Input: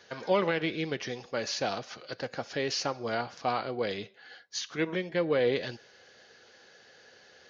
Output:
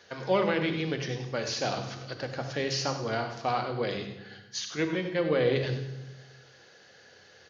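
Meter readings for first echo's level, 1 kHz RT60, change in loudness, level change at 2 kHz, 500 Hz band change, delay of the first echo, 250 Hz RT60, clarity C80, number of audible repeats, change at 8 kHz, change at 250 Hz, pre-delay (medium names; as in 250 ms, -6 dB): -12.5 dB, 1.0 s, +1.5 dB, +1.0 dB, +1.0 dB, 97 ms, 1.4 s, 9.0 dB, 1, no reading, +2.5 dB, 28 ms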